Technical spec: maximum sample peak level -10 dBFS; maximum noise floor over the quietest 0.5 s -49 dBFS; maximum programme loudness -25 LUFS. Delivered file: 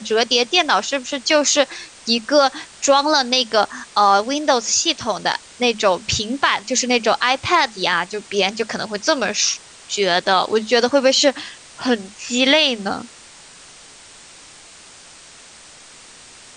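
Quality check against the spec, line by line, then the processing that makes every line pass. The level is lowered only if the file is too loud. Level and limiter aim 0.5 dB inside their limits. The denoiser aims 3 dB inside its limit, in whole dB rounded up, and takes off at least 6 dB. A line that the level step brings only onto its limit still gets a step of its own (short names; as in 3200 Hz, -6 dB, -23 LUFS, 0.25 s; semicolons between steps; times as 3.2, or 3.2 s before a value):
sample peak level -3.5 dBFS: fail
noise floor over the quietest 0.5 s -43 dBFS: fail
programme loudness -17.5 LUFS: fail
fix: gain -8 dB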